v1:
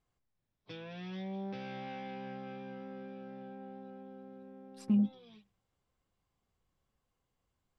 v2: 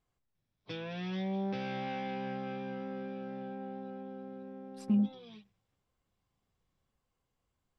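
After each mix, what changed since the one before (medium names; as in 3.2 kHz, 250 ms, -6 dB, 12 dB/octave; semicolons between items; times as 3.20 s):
background +5.5 dB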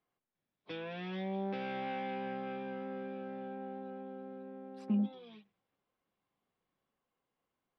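master: add three-band isolator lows -19 dB, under 180 Hz, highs -17 dB, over 3.9 kHz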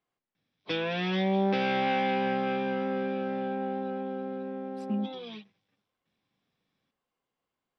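background +11.0 dB; master: add treble shelf 4.4 kHz +10.5 dB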